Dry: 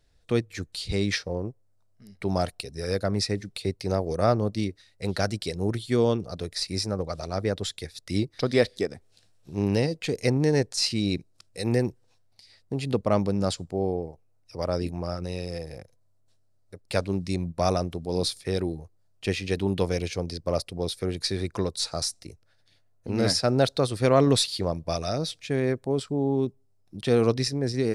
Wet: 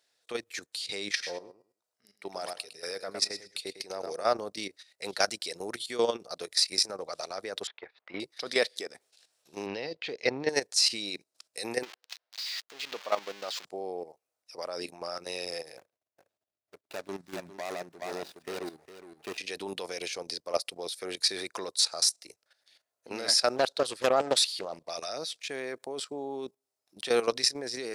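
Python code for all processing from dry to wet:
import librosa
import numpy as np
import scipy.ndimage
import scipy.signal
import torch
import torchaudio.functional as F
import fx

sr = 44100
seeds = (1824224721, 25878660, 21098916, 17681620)

y = fx.chain(x, sr, fx.comb_fb(f0_hz=480.0, decay_s=0.7, harmonics='all', damping=0.0, mix_pct=40),
    fx.echo_feedback(ms=106, feedback_pct=17, wet_db=-9.0), at=(1.1, 4.27))
y = fx.chain(y, sr, fx.law_mismatch(coded='A'),
    fx.lowpass(hz=2500.0, slope=24),
    fx.peak_eq(hz=890.0, db=6.5, octaves=1.3), at=(7.67, 8.2))
y = fx.chain(y, sr, fx.lowpass(hz=4400.0, slope=24),
    fx.low_shelf(hz=120.0, db=6.5), at=(9.66, 10.49))
y = fx.chain(y, sr, fx.crossing_spikes(level_db=-17.0),
    fx.highpass(hz=620.0, slope=6),
    fx.air_absorb(metres=230.0), at=(11.83, 13.65))
y = fx.chain(y, sr, fx.median_filter(points=41),
    fx.notch(hz=500.0, q=5.7),
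    fx.echo_single(ms=411, db=-9.5), at=(15.77, 19.38))
y = fx.chain(y, sr, fx.high_shelf(hz=3300.0, db=-3.0),
    fx.doppler_dist(depth_ms=0.55), at=(23.56, 24.9))
y = scipy.signal.sosfilt(scipy.signal.butter(2, 540.0, 'highpass', fs=sr, output='sos'), y)
y = fx.high_shelf(y, sr, hz=2100.0, db=5.5)
y = fx.level_steps(y, sr, step_db=13)
y = F.gain(torch.from_numpy(y), 3.0).numpy()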